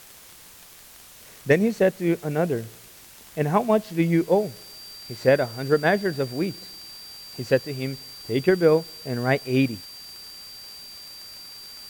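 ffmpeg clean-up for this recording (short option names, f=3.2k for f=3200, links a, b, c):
-af "adeclick=t=4,bandreject=f=4.7k:w=30,afwtdn=0.0045"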